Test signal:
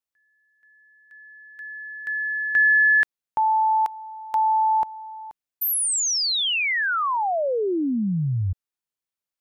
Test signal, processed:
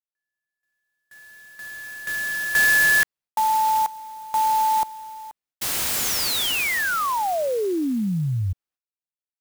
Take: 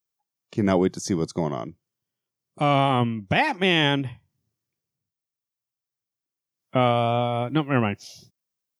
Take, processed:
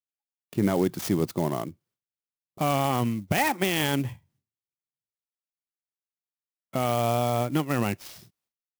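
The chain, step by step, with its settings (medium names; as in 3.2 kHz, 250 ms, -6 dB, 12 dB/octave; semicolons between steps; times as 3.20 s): gate with hold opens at -49 dBFS, hold 186 ms, range -21 dB; peak limiter -13.5 dBFS; sampling jitter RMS 0.036 ms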